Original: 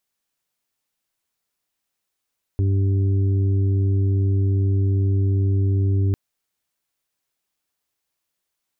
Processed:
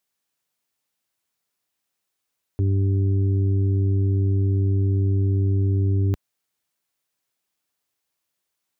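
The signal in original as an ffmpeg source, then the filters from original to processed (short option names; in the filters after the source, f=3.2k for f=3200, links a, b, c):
-f lavfi -i "aevalsrc='0.158*sin(2*PI*97.5*t)+0.0168*sin(2*PI*195*t)+0.0316*sin(2*PI*292.5*t)+0.0237*sin(2*PI*390*t)':d=3.55:s=44100"
-af "highpass=71"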